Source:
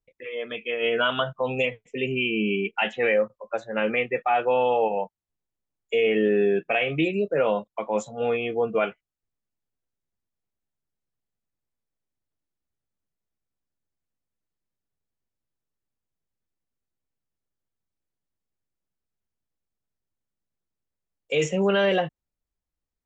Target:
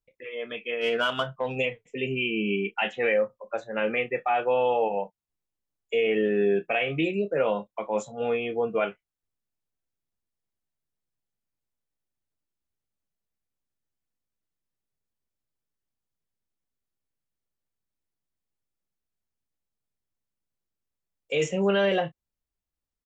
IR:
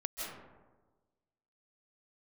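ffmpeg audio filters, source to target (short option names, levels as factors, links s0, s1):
-filter_complex "[0:a]asettb=1/sr,asplit=3[s0][s1][s2];[s0]atrim=end=0.814[s3];[s1]atrim=start=0.81:end=1.56,asetpts=PTS-STARTPTS,afade=t=in:d=0.004:c=qsin,afade=t=out:st=0.746:d=0.004:c=qsin,aeval=exprs='0.266*(cos(1*acos(clip(val(0)/0.266,-1,1)))-cos(1*PI/2))+0.00841*(cos(7*acos(clip(val(0)/0.266,-1,1)))-cos(7*PI/2))':c=same[s4];[s2]atrim=start=1.556[s5];[s3][s4]acrossfade=d=0.004:c1=hsin:c2=qsin[s6];[s6][s5]acrossfade=d=0.004:c1=qsin:c2=hsin,asplit=2[s7][s8];[s8]adelay=30,volume=0.224[s9];[s7][s9]amix=inputs=2:normalize=0,volume=0.75"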